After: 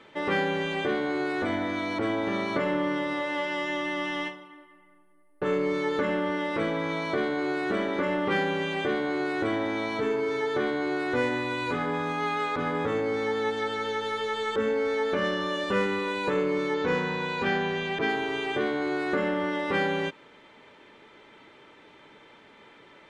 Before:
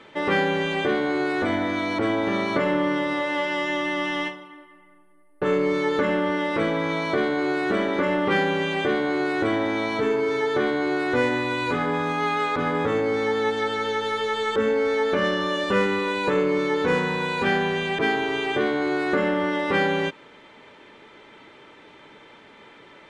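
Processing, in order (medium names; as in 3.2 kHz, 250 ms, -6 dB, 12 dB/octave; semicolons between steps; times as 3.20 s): 16.74–18.09 s: low-pass 7 kHz 24 dB/octave; trim -4.5 dB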